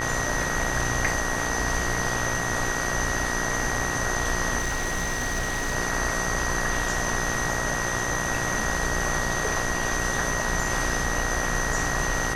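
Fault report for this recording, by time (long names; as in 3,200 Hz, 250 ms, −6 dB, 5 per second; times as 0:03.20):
mains buzz 60 Hz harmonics 31 −31 dBFS
whistle 1,900 Hz −30 dBFS
0:04.58–0:05.76: clipping −22.5 dBFS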